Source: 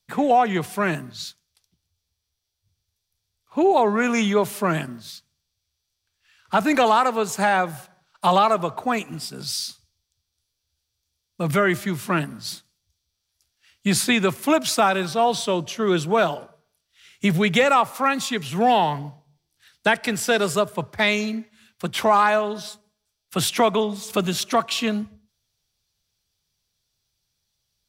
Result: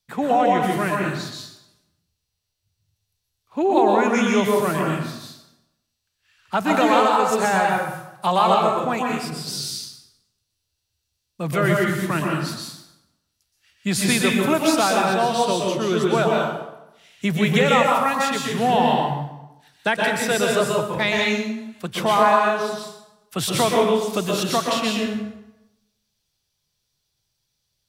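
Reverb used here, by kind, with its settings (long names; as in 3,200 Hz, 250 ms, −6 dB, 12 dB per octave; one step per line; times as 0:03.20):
dense smooth reverb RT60 0.91 s, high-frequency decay 0.75×, pre-delay 110 ms, DRR −1.5 dB
level −2.5 dB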